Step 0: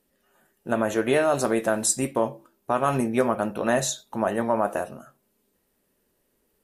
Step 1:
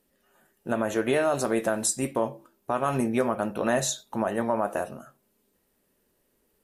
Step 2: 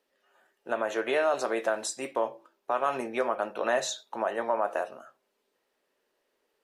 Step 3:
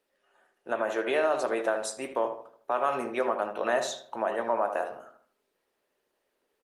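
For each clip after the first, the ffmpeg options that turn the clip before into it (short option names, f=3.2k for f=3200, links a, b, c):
-af "alimiter=limit=-13.5dB:level=0:latency=1:release=221"
-filter_complex "[0:a]acrossover=split=370 6000:gain=0.0708 1 0.158[a][b][c];[a][b][c]amix=inputs=3:normalize=0"
-filter_complex "[0:a]asplit=2[a][b];[b]adelay=77,lowpass=f=1.8k:p=1,volume=-7.5dB,asplit=2[c][d];[d]adelay=77,lowpass=f=1.8k:p=1,volume=0.45,asplit=2[e][f];[f]adelay=77,lowpass=f=1.8k:p=1,volume=0.45,asplit=2[g][h];[h]adelay=77,lowpass=f=1.8k:p=1,volume=0.45,asplit=2[i][j];[j]adelay=77,lowpass=f=1.8k:p=1,volume=0.45[k];[a][c][e][g][i][k]amix=inputs=6:normalize=0" -ar 48000 -c:a libopus -b:a 32k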